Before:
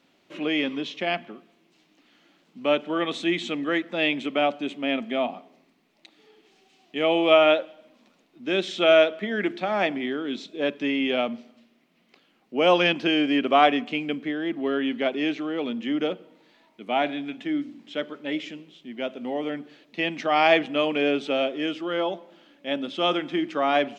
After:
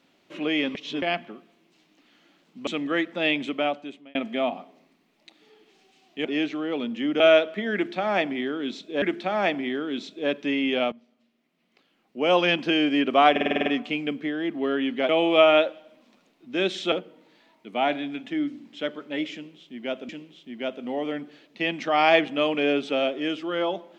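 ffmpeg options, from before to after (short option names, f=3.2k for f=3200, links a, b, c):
-filter_complex "[0:a]asplit=19[a][b][c][d][e][f][g][h][i][j][k][l][m][n][o][p][q][r][s];[a]atrim=end=0.752[t];[b]atrim=start=0.748:end=1.022,asetpts=PTS-STARTPTS,areverse[u];[c]atrim=start=1.018:end=2.672[v];[d]atrim=start=3.438:end=4.92,asetpts=PTS-STARTPTS,afade=t=out:st=0.802:d=0.68[w];[e]atrim=start=4.92:end=7.022,asetpts=PTS-STARTPTS,afade=t=in:d=0.004:c=hsin[x];[f]atrim=start=15.108:end=16.062[y];[g]atrim=start=8.848:end=10.672[z];[h]atrim=start=9.388:end=11.29,asetpts=PTS-STARTPTS,afade=t=out:st=1.898:d=0.004:c=hsin:silence=0.11885[aa];[i]atrim=start=11.29:end=13.732,asetpts=PTS-STARTPTS,afade=t=in:d=1.75:silence=0.11885[ab];[j]atrim=start=13.678:end=13.732[ac];[k]atrim=start=13.678:end=13.732[ad];[l]atrim=start=13.678:end=13.732[ae];[m]atrim=start=13.678:end=13.732[af];[n]atrim=start=13.678:end=13.732[ag];[o]atrim=start=13.678:end=13.732[ah];[p]atrim=start=13.678:end=15.112[ai];[q]atrim=start=7.018:end=8.852[aj];[r]atrim=start=16.058:end=19.232[ak];[s]atrim=start=18.468[al];[t][u]acrossfade=d=0.004:c1=hsin:c2=hsin[am];[am][v]acrossfade=d=0.004:c1=hsin:c2=hsin[an];[w][x]concat=n=2:v=0:a=1[ao];[an][ao]acrossfade=d=0.004:c1=hsin:c2=hsin[ap];[ap][y]acrossfade=d=0.004:c1=hsin:c2=hsin[aq];[aq][z]acrossfade=d=0.004:c1=hsin:c2=hsin[ar];[aa][ab]concat=n=2:v=0:a=1[as];[ar][as]acrossfade=d=0.004:c1=hsin:c2=hsin[at];[at][ac]acrossfade=d=0.004:c1=hsin:c2=hsin[au];[au][ad]acrossfade=d=0.004:c1=hsin:c2=hsin[av];[av][ae]acrossfade=d=0.004:c1=hsin:c2=hsin[aw];[aw][af]acrossfade=d=0.004:c1=hsin:c2=hsin[ax];[ax][ag]acrossfade=d=0.004:c1=hsin:c2=hsin[ay];[ay][ah]acrossfade=d=0.004:c1=hsin:c2=hsin[az];[az][ai]acrossfade=d=0.004:c1=hsin:c2=hsin[ba];[ba][aj]acrossfade=d=0.004:c1=hsin:c2=hsin[bb];[bb][ak]acrossfade=d=0.004:c1=hsin:c2=hsin[bc];[bc][al]acrossfade=d=0.004:c1=hsin:c2=hsin"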